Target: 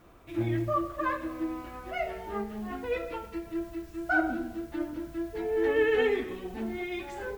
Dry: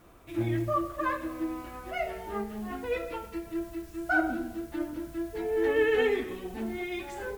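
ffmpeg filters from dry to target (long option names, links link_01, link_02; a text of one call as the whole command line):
ffmpeg -i in.wav -af "equalizer=frequency=11000:width_type=o:width=1.3:gain=-6" out.wav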